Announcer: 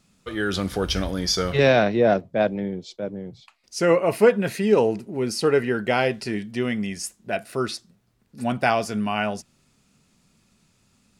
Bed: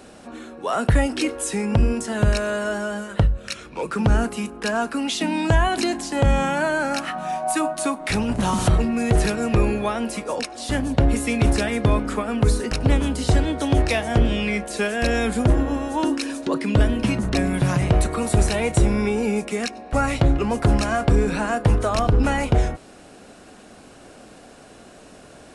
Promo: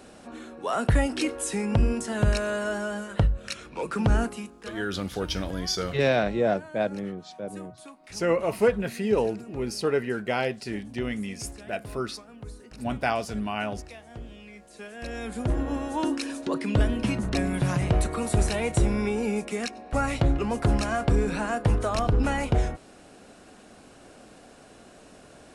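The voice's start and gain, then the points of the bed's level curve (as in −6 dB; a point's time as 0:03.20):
4.40 s, −5.5 dB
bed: 0:04.23 −4 dB
0:04.86 −23 dB
0:14.55 −23 dB
0:15.75 −5 dB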